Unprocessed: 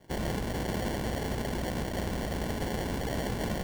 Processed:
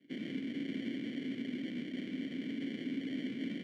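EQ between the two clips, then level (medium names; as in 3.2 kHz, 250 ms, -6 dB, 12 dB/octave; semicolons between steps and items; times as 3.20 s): vowel filter i; high-pass 130 Hz 24 dB/octave; treble shelf 6.1 kHz -6.5 dB; +5.5 dB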